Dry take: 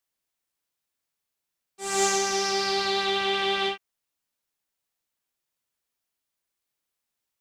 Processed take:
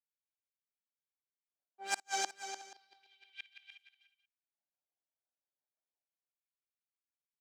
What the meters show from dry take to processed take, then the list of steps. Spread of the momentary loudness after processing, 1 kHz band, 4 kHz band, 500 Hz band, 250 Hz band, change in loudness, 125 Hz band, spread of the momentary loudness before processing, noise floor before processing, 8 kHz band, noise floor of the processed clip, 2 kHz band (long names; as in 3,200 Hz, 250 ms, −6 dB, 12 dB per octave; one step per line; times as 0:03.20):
20 LU, −15.0 dB, −19.0 dB, −26.0 dB, −26.0 dB, −15.0 dB, below −30 dB, 7 LU, −84 dBFS, −14.0 dB, below −85 dBFS, −14.0 dB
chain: meter weighting curve A
low-pass that shuts in the quiet parts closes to 750 Hz, open at −25.5 dBFS
noise gate −24 dBFS, range −19 dB
comb filter 1.3 ms, depth 72%
dynamic equaliser 1,300 Hz, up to +3 dB, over −35 dBFS, Q 0.87
leveller curve on the samples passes 1
compressor whose output falls as the input rises −33 dBFS, ratio −1
rotating-speaker cabinet horn 6 Hz
gate with flip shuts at −27 dBFS, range −42 dB
auto-filter high-pass square 0.33 Hz 320–2,400 Hz
multi-tap delay 55/297/366/481 ms −20/−9.5/−19/−20 dB
level +6 dB